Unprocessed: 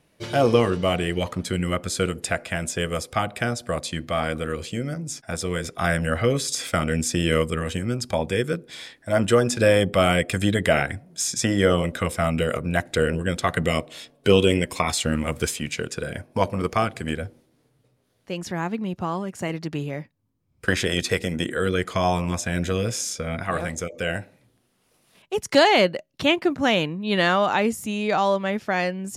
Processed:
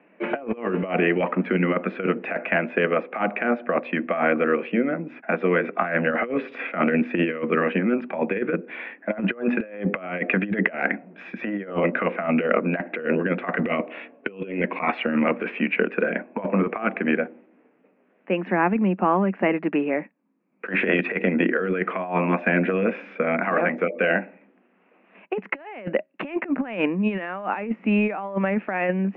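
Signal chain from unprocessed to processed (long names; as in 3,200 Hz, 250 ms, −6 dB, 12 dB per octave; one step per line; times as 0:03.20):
Chebyshev band-pass filter 190–2,600 Hz, order 5
compressor whose output falls as the input rises −27 dBFS, ratio −0.5
level +5 dB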